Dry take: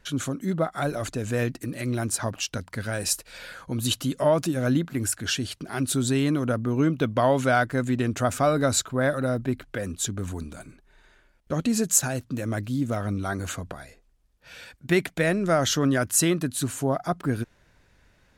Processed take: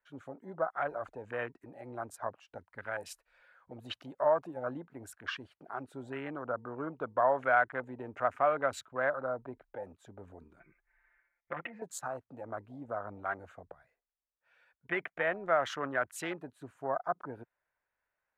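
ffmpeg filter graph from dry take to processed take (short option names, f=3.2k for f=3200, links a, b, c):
-filter_complex "[0:a]asettb=1/sr,asplit=3[a][b][c];[a]atrim=end=10.604[d];[b]atrim=start=10.6:end=11.82,asetpts=PTS-STARTPTS,afade=t=in:d=0.004:c=qsin,afade=t=out:st=1.216:d=0.004:c=qsin,acompressor=threshold=-26dB:ratio=16:attack=3.2:release=140:knee=1:detection=peak,lowpass=f=2.1k:t=q:w=6.1,aecho=1:1:5.8:0.84,atrim=end_sample=53802[e];[c]atrim=start=11.816[f];[d][e]acrossfade=d=0.004:c1=hsin:c2=qsin[g];[g][f]acrossfade=d=0.004:c1=qsin:c2=hsin,afwtdn=0.0251,acrossover=split=570 2200:gain=0.0794 1 0.0794[h][i][j];[h][i][j]amix=inputs=3:normalize=0,volume=-1.5dB"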